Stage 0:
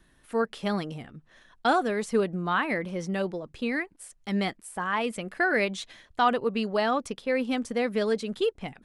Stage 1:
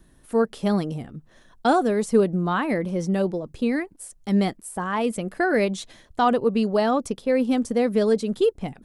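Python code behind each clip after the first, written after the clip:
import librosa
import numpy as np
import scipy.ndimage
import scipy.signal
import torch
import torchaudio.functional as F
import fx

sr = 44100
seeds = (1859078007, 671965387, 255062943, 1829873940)

y = fx.peak_eq(x, sr, hz=2200.0, db=-10.5, octaves=2.6)
y = y * librosa.db_to_amplitude(8.0)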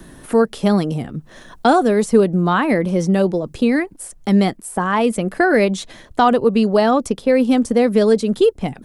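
y = fx.band_squash(x, sr, depth_pct=40)
y = y * librosa.db_to_amplitude(6.5)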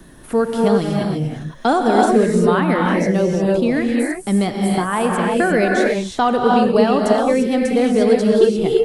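y = fx.rev_gated(x, sr, seeds[0], gate_ms=370, shape='rising', drr_db=-1.0)
y = y * librosa.db_to_amplitude(-3.0)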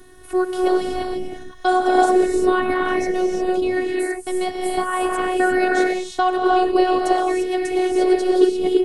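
y = fx.robotise(x, sr, hz=368.0)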